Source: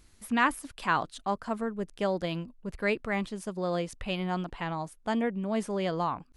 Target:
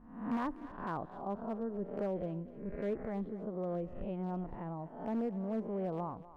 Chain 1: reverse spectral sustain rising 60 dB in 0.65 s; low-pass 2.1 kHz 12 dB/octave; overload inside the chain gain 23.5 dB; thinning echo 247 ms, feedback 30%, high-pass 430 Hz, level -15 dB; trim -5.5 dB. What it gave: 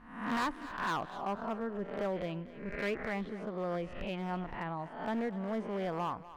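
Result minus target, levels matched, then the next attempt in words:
2 kHz band +11.0 dB
reverse spectral sustain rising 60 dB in 0.65 s; low-pass 630 Hz 12 dB/octave; overload inside the chain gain 23.5 dB; thinning echo 247 ms, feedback 30%, high-pass 430 Hz, level -15 dB; trim -5.5 dB

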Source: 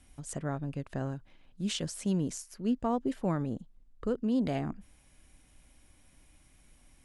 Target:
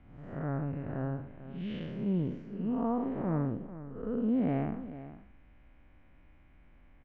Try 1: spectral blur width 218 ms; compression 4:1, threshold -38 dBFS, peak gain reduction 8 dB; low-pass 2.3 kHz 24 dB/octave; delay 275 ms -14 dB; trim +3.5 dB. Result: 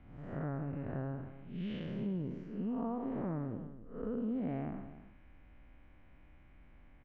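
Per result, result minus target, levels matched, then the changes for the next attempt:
compression: peak gain reduction +8 dB; echo 169 ms early
remove: compression 4:1, threshold -38 dBFS, peak gain reduction 8 dB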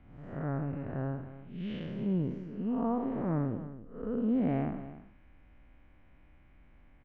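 echo 169 ms early
change: delay 444 ms -14 dB

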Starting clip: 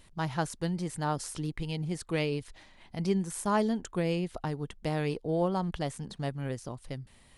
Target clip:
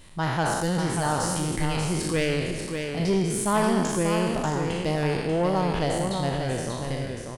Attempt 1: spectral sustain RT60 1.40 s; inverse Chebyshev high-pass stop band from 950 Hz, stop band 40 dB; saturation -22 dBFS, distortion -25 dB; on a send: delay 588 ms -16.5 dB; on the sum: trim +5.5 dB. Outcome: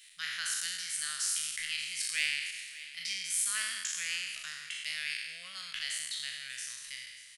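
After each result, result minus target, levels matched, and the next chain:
1 kHz band -17.0 dB; echo-to-direct -10.5 dB
spectral sustain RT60 1.40 s; saturation -22 dBFS, distortion -15 dB; on a send: delay 588 ms -16.5 dB; on the sum: trim +5.5 dB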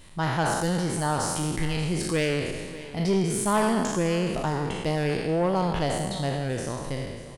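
echo-to-direct -10.5 dB
spectral sustain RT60 1.40 s; saturation -22 dBFS, distortion -15 dB; on a send: delay 588 ms -6 dB; on the sum: trim +5.5 dB

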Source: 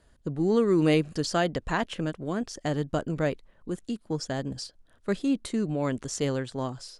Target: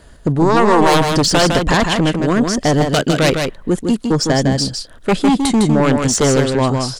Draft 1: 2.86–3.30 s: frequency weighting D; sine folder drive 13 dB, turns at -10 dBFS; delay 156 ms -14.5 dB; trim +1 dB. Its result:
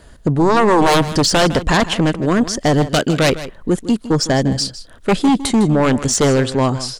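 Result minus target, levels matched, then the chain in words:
echo-to-direct -9.5 dB
2.86–3.30 s: frequency weighting D; sine folder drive 13 dB, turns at -10 dBFS; delay 156 ms -5 dB; trim +1 dB

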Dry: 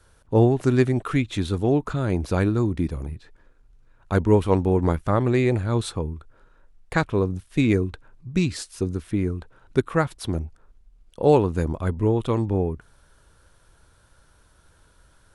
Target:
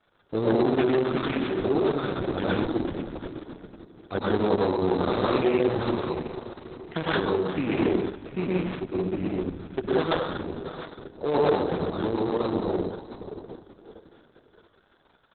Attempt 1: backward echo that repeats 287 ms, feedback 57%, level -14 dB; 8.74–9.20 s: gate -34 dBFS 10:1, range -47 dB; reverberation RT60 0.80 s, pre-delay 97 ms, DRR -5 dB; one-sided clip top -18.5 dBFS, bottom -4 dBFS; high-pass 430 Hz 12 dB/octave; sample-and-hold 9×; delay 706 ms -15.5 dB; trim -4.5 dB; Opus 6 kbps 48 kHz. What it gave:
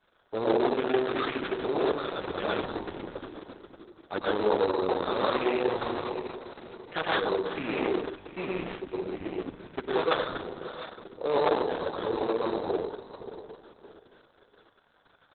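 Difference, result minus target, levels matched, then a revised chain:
250 Hz band -3.5 dB
backward echo that repeats 287 ms, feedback 57%, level -14 dB; 8.74–9.20 s: gate -34 dBFS 10:1, range -47 dB; reverberation RT60 0.80 s, pre-delay 97 ms, DRR -5 dB; one-sided clip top -18.5 dBFS, bottom -4 dBFS; high-pass 190 Hz 12 dB/octave; sample-and-hold 9×; delay 706 ms -15.5 dB; trim -4.5 dB; Opus 6 kbps 48 kHz

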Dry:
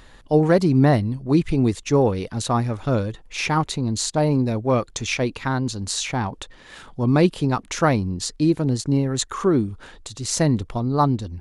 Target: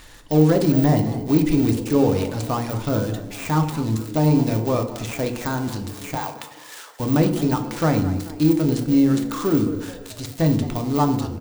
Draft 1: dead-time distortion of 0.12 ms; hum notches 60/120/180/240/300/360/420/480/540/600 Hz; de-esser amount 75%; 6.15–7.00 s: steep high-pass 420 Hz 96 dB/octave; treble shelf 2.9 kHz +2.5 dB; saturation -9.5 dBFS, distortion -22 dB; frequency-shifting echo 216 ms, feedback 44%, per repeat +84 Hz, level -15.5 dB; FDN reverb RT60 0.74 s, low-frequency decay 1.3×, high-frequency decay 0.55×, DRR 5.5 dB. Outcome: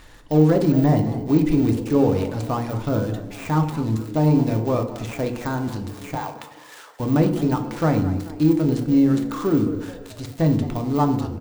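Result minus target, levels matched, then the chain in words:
8 kHz band -6.5 dB
dead-time distortion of 0.12 ms; hum notches 60/120/180/240/300/360/420/480/540/600 Hz; de-esser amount 75%; 6.15–7.00 s: steep high-pass 420 Hz 96 dB/octave; treble shelf 2.9 kHz +10.5 dB; saturation -9.5 dBFS, distortion -21 dB; frequency-shifting echo 216 ms, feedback 44%, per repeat +84 Hz, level -15.5 dB; FDN reverb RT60 0.74 s, low-frequency decay 1.3×, high-frequency decay 0.55×, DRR 5.5 dB

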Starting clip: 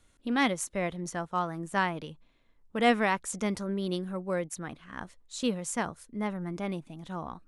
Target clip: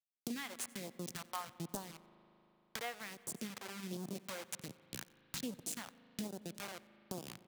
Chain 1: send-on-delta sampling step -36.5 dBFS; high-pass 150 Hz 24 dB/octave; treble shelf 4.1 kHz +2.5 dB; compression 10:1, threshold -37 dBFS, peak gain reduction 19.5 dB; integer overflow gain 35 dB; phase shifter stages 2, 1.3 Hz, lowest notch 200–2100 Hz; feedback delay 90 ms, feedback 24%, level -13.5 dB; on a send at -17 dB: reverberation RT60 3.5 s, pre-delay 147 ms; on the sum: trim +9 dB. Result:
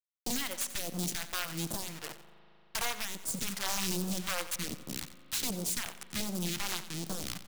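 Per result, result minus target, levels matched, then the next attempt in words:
compression: peak gain reduction -8.5 dB; send-on-delta sampling: distortion -9 dB; echo-to-direct +4 dB
send-on-delta sampling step -36.5 dBFS; high-pass 150 Hz 24 dB/octave; treble shelf 4.1 kHz +2.5 dB; compression 10:1, threshold -47 dBFS, peak gain reduction 28.5 dB; integer overflow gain 35 dB; phase shifter stages 2, 1.3 Hz, lowest notch 200–2100 Hz; feedback delay 90 ms, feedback 24%, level -13.5 dB; on a send at -17 dB: reverberation RT60 3.5 s, pre-delay 147 ms; on the sum: trim +9 dB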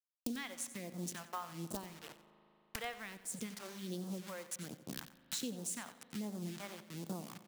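send-on-delta sampling: distortion -9 dB; echo-to-direct +4 dB
send-on-delta sampling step -28 dBFS; high-pass 150 Hz 24 dB/octave; treble shelf 4.1 kHz +2.5 dB; compression 10:1, threshold -47 dBFS, peak gain reduction 28 dB; integer overflow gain 35 dB; phase shifter stages 2, 1.3 Hz, lowest notch 200–2100 Hz; feedback delay 90 ms, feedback 24%, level -13.5 dB; on a send at -17 dB: reverberation RT60 3.5 s, pre-delay 147 ms; on the sum: trim +9 dB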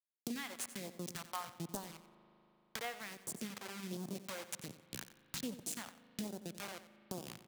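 echo-to-direct +4 dB
send-on-delta sampling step -28 dBFS; high-pass 150 Hz 24 dB/octave; treble shelf 4.1 kHz +2.5 dB; compression 10:1, threshold -47 dBFS, peak gain reduction 28 dB; integer overflow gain 35 dB; phase shifter stages 2, 1.3 Hz, lowest notch 200–2100 Hz; feedback delay 90 ms, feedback 24%, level -22.5 dB; on a send at -17 dB: reverberation RT60 3.5 s, pre-delay 147 ms; on the sum: trim +9 dB

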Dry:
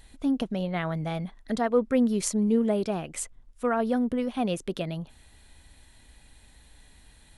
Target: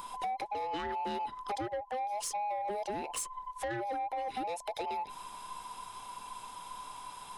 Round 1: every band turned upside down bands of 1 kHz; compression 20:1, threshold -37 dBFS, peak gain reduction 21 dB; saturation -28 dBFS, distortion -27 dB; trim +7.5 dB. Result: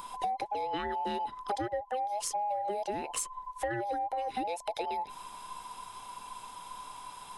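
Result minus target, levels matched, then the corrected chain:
saturation: distortion -13 dB
every band turned upside down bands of 1 kHz; compression 20:1, threshold -37 dBFS, peak gain reduction 21 dB; saturation -37.5 dBFS, distortion -14 dB; trim +7.5 dB

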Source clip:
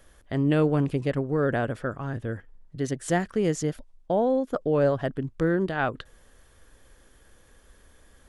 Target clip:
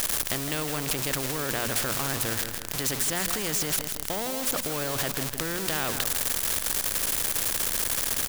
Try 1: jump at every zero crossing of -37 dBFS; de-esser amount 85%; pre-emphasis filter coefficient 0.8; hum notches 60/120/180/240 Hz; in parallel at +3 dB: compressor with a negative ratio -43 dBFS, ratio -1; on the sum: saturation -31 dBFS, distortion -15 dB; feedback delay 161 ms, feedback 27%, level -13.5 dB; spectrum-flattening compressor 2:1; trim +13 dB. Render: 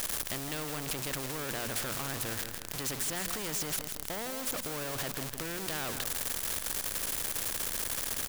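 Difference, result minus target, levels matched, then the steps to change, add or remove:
saturation: distortion +17 dB
change: saturation -20 dBFS, distortion -31 dB

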